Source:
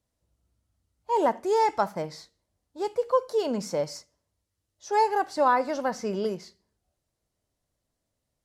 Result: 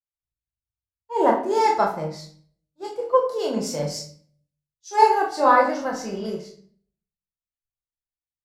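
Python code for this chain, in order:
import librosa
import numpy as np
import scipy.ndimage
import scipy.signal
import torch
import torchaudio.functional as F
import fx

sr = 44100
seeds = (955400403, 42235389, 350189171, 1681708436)

y = fx.room_early_taps(x, sr, ms=(26, 41), db=(-6.0, -7.5))
y = fx.room_shoebox(y, sr, seeds[0], volume_m3=240.0, walls='mixed', distance_m=0.84)
y = fx.band_widen(y, sr, depth_pct=100)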